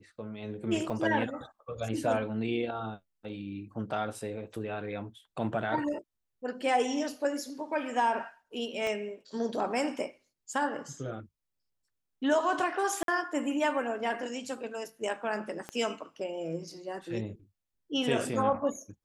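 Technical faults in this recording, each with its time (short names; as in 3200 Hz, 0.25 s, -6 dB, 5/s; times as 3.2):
0.9 gap 2.4 ms
8.87 pop -22 dBFS
13.03–13.08 gap 52 ms
15.69 pop -23 dBFS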